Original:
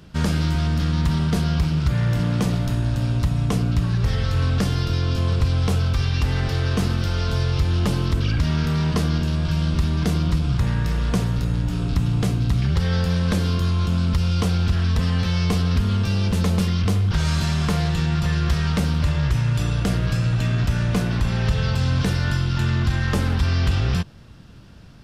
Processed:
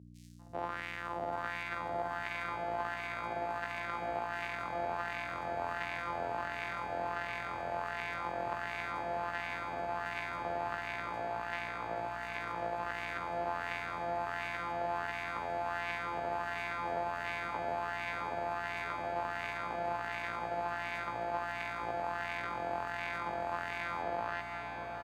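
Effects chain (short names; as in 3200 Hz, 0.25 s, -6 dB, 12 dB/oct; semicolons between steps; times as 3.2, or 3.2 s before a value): sample sorter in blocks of 256 samples; three bands offset in time highs, lows, mids 0.33/0.39 s, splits 170/5600 Hz; wah 1.4 Hz 690–2200 Hz, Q 3.3; on a send: diffused feedback echo 0.719 s, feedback 67%, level -5.5 dB; on the sum: hum 60 Hz, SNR 12 dB; HPF 96 Hz 12 dB/oct; gain -4.5 dB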